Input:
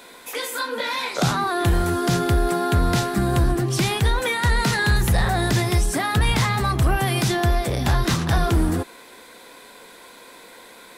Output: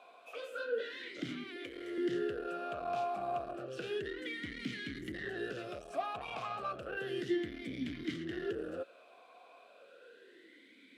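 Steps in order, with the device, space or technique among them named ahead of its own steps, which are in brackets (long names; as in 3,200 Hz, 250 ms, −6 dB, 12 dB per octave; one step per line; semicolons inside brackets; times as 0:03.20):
talk box (tube saturation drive 21 dB, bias 0.4; formant filter swept between two vowels a-i 0.32 Hz)
0:01.56–0:01.98: low shelf with overshoot 320 Hz −13.5 dB, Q 3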